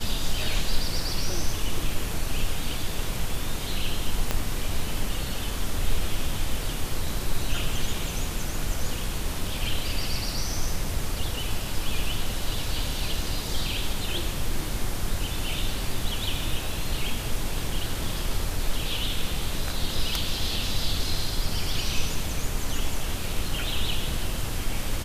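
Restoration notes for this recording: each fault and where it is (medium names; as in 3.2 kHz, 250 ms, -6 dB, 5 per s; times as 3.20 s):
4.31 s: pop -9 dBFS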